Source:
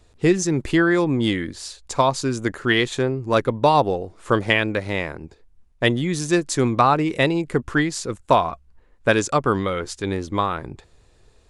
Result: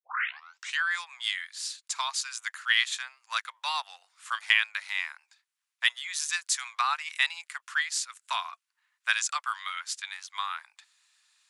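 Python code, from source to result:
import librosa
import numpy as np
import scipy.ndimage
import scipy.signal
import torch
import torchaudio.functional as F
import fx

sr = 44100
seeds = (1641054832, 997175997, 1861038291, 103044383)

y = fx.tape_start_head(x, sr, length_s=0.82)
y = scipy.signal.sosfilt(scipy.signal.bessel(8, 1900.0, 'highpass', norm='mag', fs=sr, output='sos'), y)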